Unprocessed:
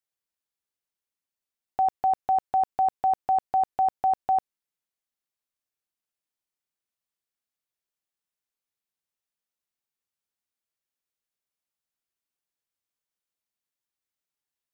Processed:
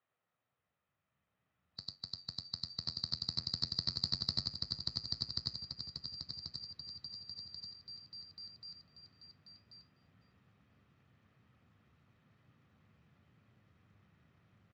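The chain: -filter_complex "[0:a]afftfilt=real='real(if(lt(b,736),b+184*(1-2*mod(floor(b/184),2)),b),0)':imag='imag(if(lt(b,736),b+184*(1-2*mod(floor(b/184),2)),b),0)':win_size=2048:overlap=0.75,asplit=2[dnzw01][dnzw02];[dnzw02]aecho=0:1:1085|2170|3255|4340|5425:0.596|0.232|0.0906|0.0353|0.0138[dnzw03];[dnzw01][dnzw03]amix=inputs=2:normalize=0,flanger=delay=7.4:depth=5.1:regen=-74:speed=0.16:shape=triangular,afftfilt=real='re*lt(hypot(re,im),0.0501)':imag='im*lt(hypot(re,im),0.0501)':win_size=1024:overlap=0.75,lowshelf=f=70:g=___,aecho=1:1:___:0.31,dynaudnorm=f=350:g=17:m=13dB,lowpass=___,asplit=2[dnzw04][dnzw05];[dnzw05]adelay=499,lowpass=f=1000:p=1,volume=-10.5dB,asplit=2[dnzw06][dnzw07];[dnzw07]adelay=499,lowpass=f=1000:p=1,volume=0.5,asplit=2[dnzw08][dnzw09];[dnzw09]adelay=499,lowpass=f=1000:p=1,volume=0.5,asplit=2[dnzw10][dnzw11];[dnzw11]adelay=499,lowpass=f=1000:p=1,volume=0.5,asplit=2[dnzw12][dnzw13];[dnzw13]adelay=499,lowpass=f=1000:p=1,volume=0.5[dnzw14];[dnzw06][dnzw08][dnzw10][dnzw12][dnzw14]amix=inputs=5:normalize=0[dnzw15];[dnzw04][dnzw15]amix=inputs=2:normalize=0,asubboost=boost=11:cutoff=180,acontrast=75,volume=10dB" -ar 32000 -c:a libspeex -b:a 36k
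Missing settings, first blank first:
-9.5, 1.6, 1700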